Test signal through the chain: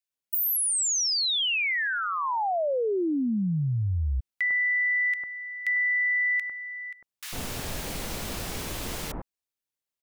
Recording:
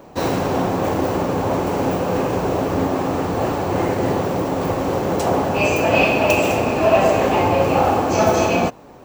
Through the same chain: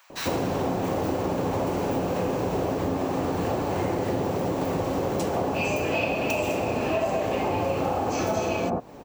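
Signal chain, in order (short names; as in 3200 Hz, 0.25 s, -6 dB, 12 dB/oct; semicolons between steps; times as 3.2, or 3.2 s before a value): bands offset in time highs, lows 0.1 s, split 1300 Hz; compressor, threshold -23 dBFS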